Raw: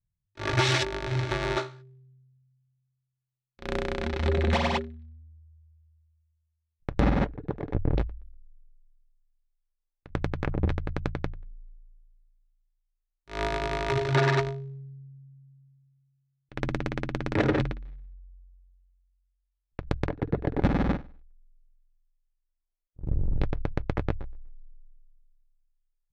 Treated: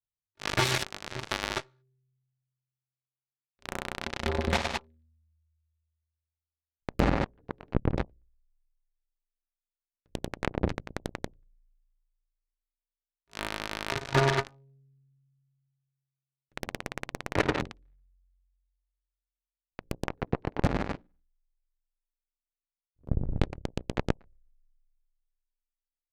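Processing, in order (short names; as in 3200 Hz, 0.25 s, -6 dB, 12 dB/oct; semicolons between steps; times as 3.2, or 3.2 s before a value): notches 60/120/180/240/300/360/420/480/540 Hz; added harmonics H 2 -9 dB, 4 -28 dB, 7 -16 dB, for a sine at -9.5 dBFS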